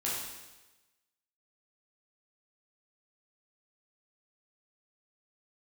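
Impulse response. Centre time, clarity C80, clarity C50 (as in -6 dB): 74 ms, 3.0 dB, 0.0 dB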